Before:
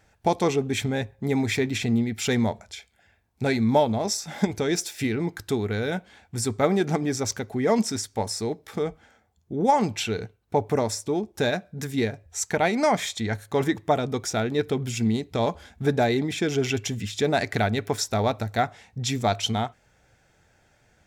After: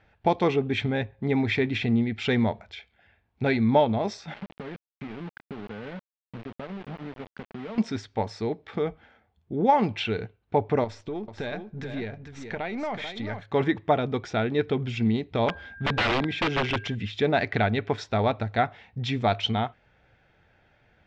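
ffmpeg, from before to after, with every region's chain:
-filter_complex "[0:a]asettb=1/sr,asplit=3[s0][s1][s2];[s0]atrim=end=4.344[s3];[s1]atrim=start=4.34:end=7.78,asetpts=PTS-STARTPTS,afade=t=in:d=0.004:c=qsin,afade=t=out:st=3.436:d=0.004:c=qsin,highpass=f=130:w=0.5412,highpass=f=130:w=1.3066,equalizer=f=130:t=q:w=4:g=-3,equalizer=f=200:t=q:w=4:g=5,equalizer=f=350:t=q:w=4:g=-8,equalizer=f=760:t=q:w=4:g=-5,equalizer=f=1200:t=q:w=4:g=-5,equalizer=f=1800:t=q:w=4:g=-7,lowpass=f=2000:w=0.5412,lowpass=f=2000:w=1.3066,acompressor=threshold=0.0251:ratio=16:attack=3.2:release=140:knee=1:detection=peak,aeval=exprs='val(0)*gte(abs(val(0)),0.0133)':c=same[s4];[s2]atrim=start=7.776[s5];[s3][s4]acrossfade=d=0.004:c1=hsin:c2=qsin[s6];[s6][s5]acrossfade=d=0.004:c1=qsin:c2=hsin,asettb=1/sr,asplit=3[s7][s8][s9];[s7]atrim=end=10.844[s10];[s8]atrim=start=10.84:end=13.43,asetpts=PTS-STARTPTS,afade=t=in:d=0.004:c=qsin,afade=t=out:st=2.586:d=0.004:c=qsin,aeval=exprs='if(lt(val(0),0),0.708*val(0),val(0))':c=same,acompressor=threshold=0.0316:ratio=3:attack=3.2:release=140:knee=1:detection=peak,aecho=1:1:439:0.398,atrim=end_sample=114219[s11];[s9]atrim=start=13.426[s12];[s10][s11]acrossfade=d=0.004:c1=hsin:c2=qsin[s13];[s13][s12]acrossfade=d=0.004:c1=qsin:c2=hsin,asettb=1/sr,asplit=3[s14][s15][s16];[s14]atrim=end=15.484[s17];[s15]atrim=start=15.48:end=16.95,asetpts=PTS-STARTPTS,afade=t=in:d=0.004:c=qsin,afade=t=out:st=1.466:d=0.004:c=qsin,aeval=exprs='val(0)+0.00708*sin(2*PI*1600*n/s)':c=same,aeval=exprs='(mod(7.94*val(0)+1,2)-1)/7.94':c=same[s18];[s16]atrim=start=16.946[s19];[s17][s18]acrossfade=d=0.004:c1=hsin:c2=qsin[s20];[s20][s19]acrossfade=d=0.004:c1=qsin:c2=hsin,lowpass=f=3300:w=0.5412,lowpass=f=3300:w=1.3066,aemphasis=mode=production:type=cd"

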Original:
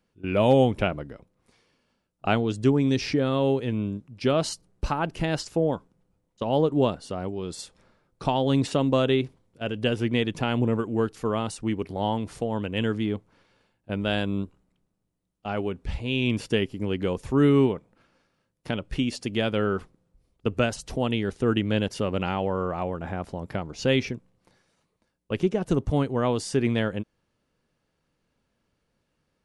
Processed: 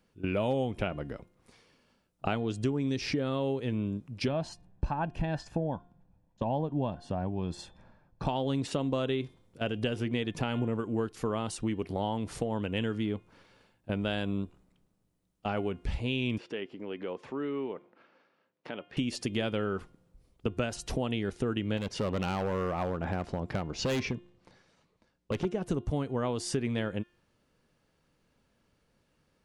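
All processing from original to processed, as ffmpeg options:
-filter_complex "[0:a]asettb=1/sr,asplit=3[s0][s1][s2];[s0]atrim=end=4.284[s3];[s1]atrim=start=4.28:end=8.27,asetpts=PTS-STARTPTS,afade=t=in:d=0.004:c=qsin,afade=t=out:st=3.986:d=0.004:c=qsin,lowpass=f=1300:p=1,aecho=1:1:1.2:0.54,atrim=end_sample=175959[s4];[s2]atrim=start=8.266[s5];[s3][s4]acrossfade=d=0.004:c1=hsin:c2=qsin[s6];[s6][s5]acrossfade=d=0.004:c1=qsin:c2=hsin,asettb=1/sr,asplit=3[s7][s8][s9];[s7]atrim=end=16.384[s10];[s8]atrim=start=16.38:end=18.97,asetpts=PTS-STARTPTS,afade=t=in:d=0.004:c=qsin,afade=t=out:st=2.586:d=0.004:c=qsin,acompressor=threshold=0.00891:ratio=2:attack=3.2:release=140:knee=1:detection=peak,highpass=310,lowpass=3000[s11];[s9]atrim=start=18.966[s12];[s10][s11]acrossfade=d=0.004:c1=hsin:c2=qsin[s13];[s13][s12]acrossfade=d=0.004:c1=qsin:c2=hsin,asettb=1/sr,asplit=3[s14][s15][s16];[s14]atrim=end=21.774[s17];[s15]atrim=start=21.77:end=25.45,asetpts=PTS-STARTPTS,afade=t=in:d=0.004:c=qsin,afade=t=out:st=3.676:d=0.004:c=qsin,lowpass=6300,asoftclip=type=hard:threshold=0.0631[s18];[s16]atrim=start=25.446[s19];[s17][s18]acrossfade=d=0.004:c1=hsin:c2=qsin[s20];[s20][s19]acrossfade=d=0.004:c1=qsin:c2=hsin,acompressor=threshold=0.0251:ratio=4,bandreject=f=353.2:t=h:w=4,bandreject=f=706.4:t=h:w=4,bandreject=f=1059.6:t=h:w=4,bandreject=f=1412.8:t=h:w=4,bandreject=f=1766:t=h:w=4,bandreject=f=2119.2:t=h:w=4,bandreject=f=2472.4:t=h:w=4,bandreject=f=2825.6:t=h:w=4,bandreject=f=3178.8:t=h:w=4,bandreject=f=3532:t=h:w=4,bandreject=f=3885.2:t=h:w=4,volume=1.41"

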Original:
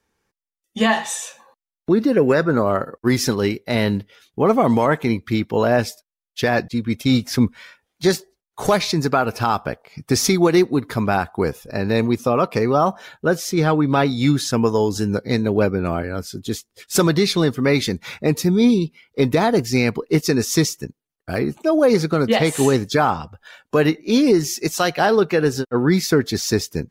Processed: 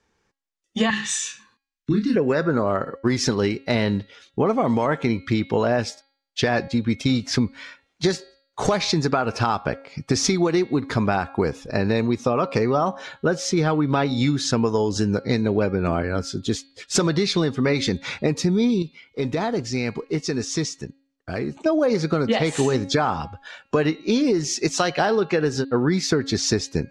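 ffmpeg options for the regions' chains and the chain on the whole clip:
-filter_complex "[0:a]asettb=1/sr,asplit=3[s0][s1][s2];[s0]atrim=end=0.904[s3];[s1]atrim=start=0.9:end=2.16,asetpts=PTS-STARTPTS,afade=t=in:d=0.004:c=qsin,afade=t=out:st=1.256:d=0.004:c=qsin,afreqshift=-13,asuperstop=centerf=650:order=4:qfactor=0.52,asplit=2[s4][s5];[s5]adelay=28,volume=0.631[s6];[s4][s6]amix=inputs=2:normalize=0,atrim=end_sample=55566[s7];[s2]atrim=start=2.156[s8];[s3][s7]acrossfade=d=0.004:c1=hsin:c2=qsin[s9];[s9][s8]acrossfade=d=0.004:c1=qsin:c2=hsin,asettb=1/sr,asplit=3[s10][s11][s12];[s10]atrim=end=18.824[s13];[s11]atrim=start=18.82:end=21.66,asetpts=PTS-STARTPTS,afade=t=in:d=0.004:c=qsin,afade=t=out:st=2.836:d=0.004:c=qsin,lowpass=11000,acompressor=threshold=0.01:ratio=1.5:attack=3.2:release=140:knee=1:detection=peak,acrusher=bits=9:mode=log:mix=0:aa=0.000001[s14];[s12]atrim=start=21.656[s15];[s13][s14]acrossfade=d=0.004:c1=hsin:c2=qsin[s16];[s16][s15]acrossfade=d=0.004:c1=qsin:c2=hsin,lowpass=f=7500:w=0.5412,lowpass=f=7500:w=1.3066,bandreject=f=273.6:t=h:w=4,bandreject=f=547.2:t=h:w=4,bandreject=f=820.8:t=h:w=4,bandreject=f=1094.4:t=h:w=4,bandreject=f=1368:t=h:w=4,bandreject=f=1641.6:t=h:w=4,bandreject=f=1915.2:t=h:w=4,bandreject=f=2188.8:t=h:w=4,bandreject=f=2462.4:t=h:w=4,bandreject=f=2736:t=h:w=4,bandreject=f=3009.6:t=h:w=4,bandreject=f=3283.2:t=h:w=4,bandreject=f=3556.8:t=h:w=4,bandreject=f=3830.4:t=h:w=4,bandreject=f=4104:t=h:w=4,bandreject=f=4377.6:t=h:w=4,bandreject=f=4651.2:t=h:w=4,acompressor=threshold=0.1:ratio=6,volume=1.41"

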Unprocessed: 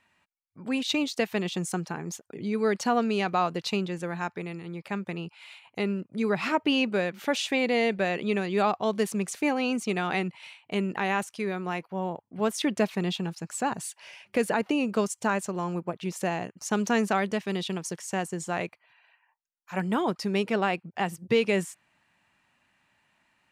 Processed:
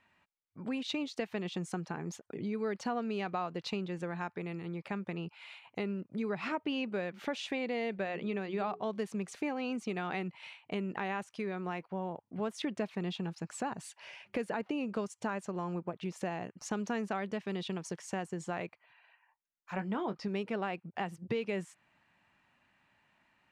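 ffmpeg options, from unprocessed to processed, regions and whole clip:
-filter_complex "[0:a]asettb=1/sr,asplit=3[s0][s1][s2];[s0]atrim=end=8.044[s3];[s1]atrim=start=8.04:end=8.9,asetpts=PTS-STARTPTS,afade=t=in:d=0.004:c=qsin,afade=t=out:st=0.856:d=0.004:c=qsin,highshelf=f=7800:g=-8,bandreject=f=60:t=h:w=6,bandreject=f=120:t=h:w=6,bandreject=f=180:t=h:w=6,bandreject=f=240:t=h:w=6,bandreject=f=300:t=h:w=6,bandreject=f=360:t=h:w=6,bandreject=f=420:t=h:w=6,bandreject=f=480:t=h:w=6[s4];[s2]atrim=start=8.896[s5];[s3][s4]acrossfade=d=0.004:c1=hsin:c2=qsin[s6];[s6][s5]acrossfade=d=0.004:c1=qsin:c2=hsin,asettb=1/sr,asplit=3[s7][s8][s9];[s7]atrim=end=19.754[s10];[s8]atrim=start=19.75:end=20.28,asetpts=PTS-STARTPTS,afade=t=in:d=0.004:c=qsin,afade=t=out:st=0.526:d=0.004:c=qsin,lowpass=6100,asplit=2[s11][s12];[s12]adelay=20,volume=0.316[s13];[s11][s13]amix=inputs=2:normalize=0,atrim=end_sample=23373[s14];[s9]atrim=start=20.276[s15];[s10][s14]acrossfade=d=0.004:c1=hsin:c2=qsin[s16];[s16][s15]acrossfade=d=0.004:c1=qsin:c2=hsin,aemphasis=mode=reproduction:type=50fm,acompressor=threshold=0.0178:ratio=2.5,volume=0.891"

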